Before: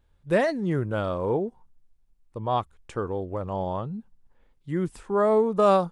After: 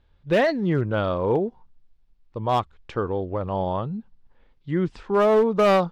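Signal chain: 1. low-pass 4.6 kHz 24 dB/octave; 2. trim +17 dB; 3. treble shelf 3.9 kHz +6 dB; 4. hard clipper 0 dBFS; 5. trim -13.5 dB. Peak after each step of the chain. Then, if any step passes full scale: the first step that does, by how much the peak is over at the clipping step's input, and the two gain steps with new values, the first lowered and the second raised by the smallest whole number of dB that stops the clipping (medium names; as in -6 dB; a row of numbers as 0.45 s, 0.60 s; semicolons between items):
-9.5 dBFS, +7.5 dBFS, +8.0 dBFS, 0.0 dBFS, -13.5 dBFS; step 2, 8.0 dB; step 2 +9 dB, step 5 -5.5 dB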